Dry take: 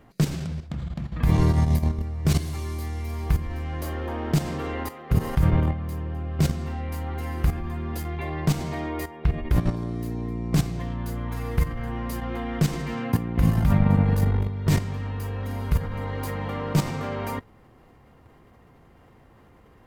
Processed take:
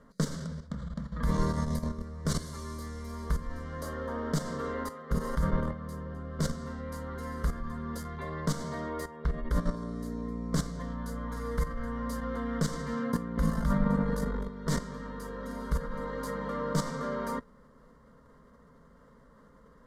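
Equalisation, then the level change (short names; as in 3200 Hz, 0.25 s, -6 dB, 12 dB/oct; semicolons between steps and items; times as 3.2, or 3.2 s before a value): LPF 8800 Hz 12 dB/oct; dynamic EQ 120 Hz, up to -7 dB, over -33 dBFS, Q 0.72; fixed phaser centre 510 Hz, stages 8; 0.0 dB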